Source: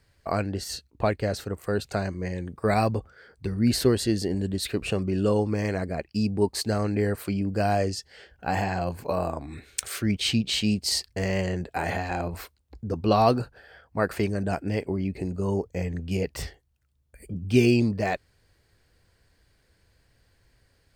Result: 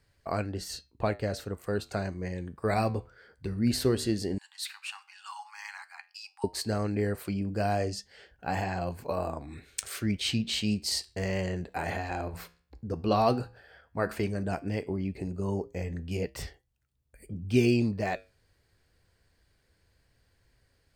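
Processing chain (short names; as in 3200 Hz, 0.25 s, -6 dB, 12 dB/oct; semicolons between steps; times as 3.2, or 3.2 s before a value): flange 0.12 Hz, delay 6.8 ms, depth 8 ms, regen -80%; 4.38–6.44 Chebyshev high-pass 800 Hz, order 8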